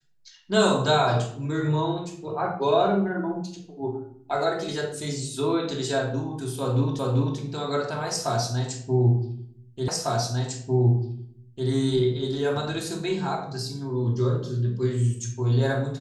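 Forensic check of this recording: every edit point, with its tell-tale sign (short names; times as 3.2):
6.99 repeat of the last 0.39 s
9.88 repeat of the last 1.8 s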